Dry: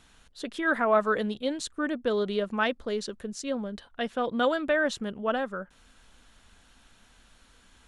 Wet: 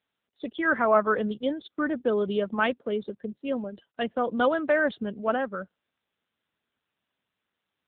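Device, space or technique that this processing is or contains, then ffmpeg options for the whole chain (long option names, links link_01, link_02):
mobile call with aggressive noise cancelling: -af "highpass=frequency=140:width=0.5412,highpass=frequency=140:width=1.3066,afftdn=noise_reduction=24:noise_floor=-41,volume=2.5dB" -ar 8000 -c:a libopencore_amrnb -b:a 7950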